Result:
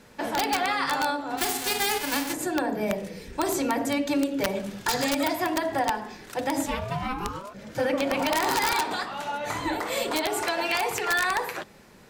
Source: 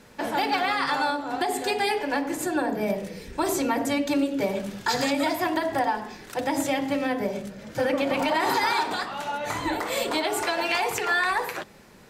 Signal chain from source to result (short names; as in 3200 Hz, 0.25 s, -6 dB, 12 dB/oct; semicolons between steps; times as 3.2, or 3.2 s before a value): 1.37–2.32 spectral whitening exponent 0.3; 6.65–7.53 ring modulator 290 Hz -> 880 Hz; wrapped overs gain 15 dB; gain -1 dB